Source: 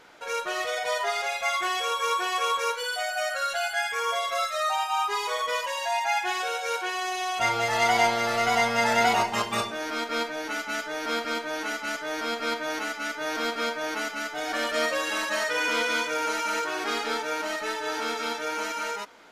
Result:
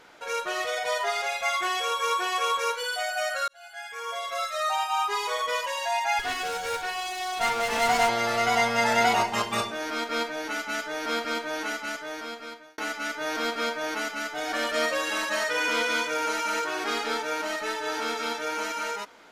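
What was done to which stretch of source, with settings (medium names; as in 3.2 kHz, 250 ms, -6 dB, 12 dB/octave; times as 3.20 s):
3.48–4.75 s: fade in
6.19–8.09 s: comb filter that takes the minimum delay 4.2 ms
11.68–12.78 s: fade out linear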